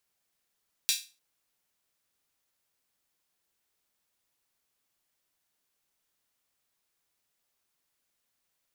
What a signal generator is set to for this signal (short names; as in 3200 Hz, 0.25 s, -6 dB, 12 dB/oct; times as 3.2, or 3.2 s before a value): open hi-hat length 0.30 s, high-pass 3400 Hz, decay 0.31 s